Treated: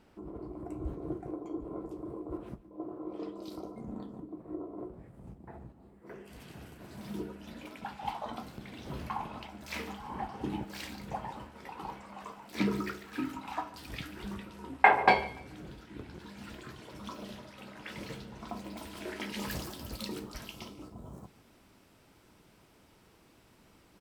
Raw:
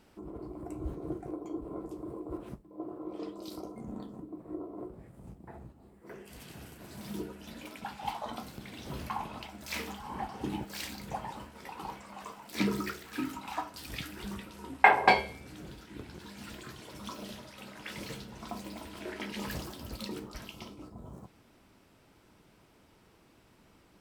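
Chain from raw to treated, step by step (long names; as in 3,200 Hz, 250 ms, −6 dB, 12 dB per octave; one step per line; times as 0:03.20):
high-shelf EQ 4,100 Hz −8 dB, from 0:18.77 +3 dB
repeating echo 145 ms, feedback 31%, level −19.5 dB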